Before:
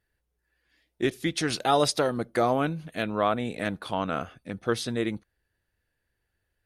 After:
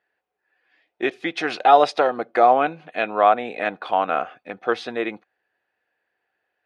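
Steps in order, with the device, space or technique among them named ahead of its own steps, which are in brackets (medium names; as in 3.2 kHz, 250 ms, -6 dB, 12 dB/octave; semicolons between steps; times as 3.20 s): tin-can telephone (band-pass 450–2500 Hz; small resonant body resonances 750/2500 Hz, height 10 dB); trim +7.5 dB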